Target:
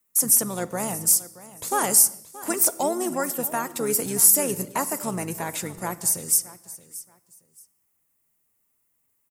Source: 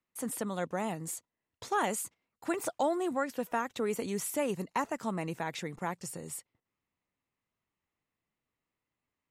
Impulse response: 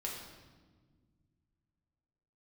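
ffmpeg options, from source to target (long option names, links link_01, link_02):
-filter_complex "[0:a]aexciter=amount=10.4:drive=3.8:freq=7500,asplit=2[link_01][link_02];[link_02]asetrate=29433,aresample=44100,atempo=1.49831,volume=-10dB[link_03];[link_01][link_03]amix=inputs=2:normalize=0,aecho=1:1:626|1252:0.133|0.0307,asplit=2[link_04][link_05];[1:a]atrim=start_sample=2205,afade=type=out:start_time=0.37:duration=0.01,atrim=end_sample=16758[link_06];[link_05][link_06]afir=irnorm=-1:irlink=0,volume=-12.5dB[link_07];[link_04][link_07]amix=inputs=2:normalize=0,volume=3dB"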